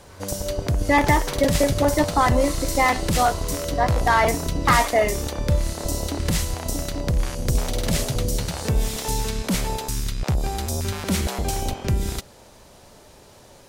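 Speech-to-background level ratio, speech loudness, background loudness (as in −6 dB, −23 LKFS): 4.0 dB, −21.5 LKFS, −25.5 LKFS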